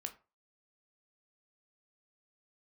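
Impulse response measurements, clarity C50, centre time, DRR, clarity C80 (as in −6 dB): 15.5 dB, 8 ms, 5.0 dB, 21.0 dB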